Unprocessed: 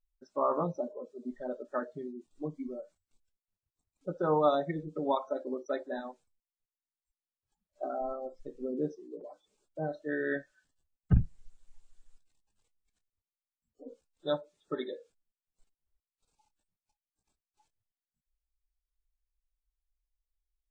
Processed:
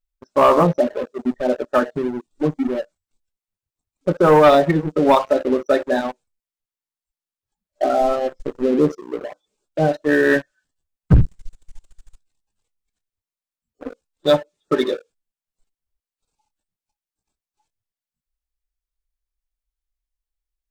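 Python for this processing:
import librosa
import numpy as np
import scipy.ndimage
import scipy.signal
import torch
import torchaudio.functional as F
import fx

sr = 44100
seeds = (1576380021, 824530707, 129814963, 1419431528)

y = fx.leveller(x, sr, passes=3)
y = F.gain(torch.from_numpy(y), 6.5).numpy()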